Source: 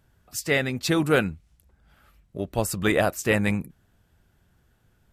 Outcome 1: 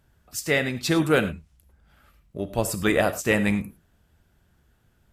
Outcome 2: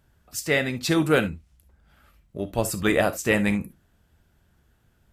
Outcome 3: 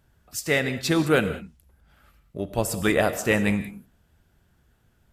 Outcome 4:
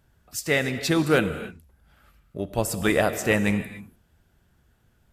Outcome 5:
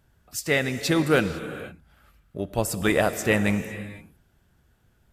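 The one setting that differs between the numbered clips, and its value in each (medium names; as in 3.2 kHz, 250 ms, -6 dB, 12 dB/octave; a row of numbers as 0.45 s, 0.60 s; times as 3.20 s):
gated-style reverb, gate: 130 ms, 90 ms, 220 ms, 320 ms, 530 ms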